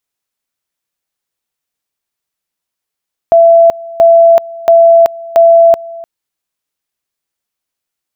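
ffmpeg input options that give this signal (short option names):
-f lavfi -i "aevalsrc='pow(10,(-1.5-21.5*gte(mod(t,0.68),0.38))/20)*sin(2*PI*670*t)':d=2.72:s=44100"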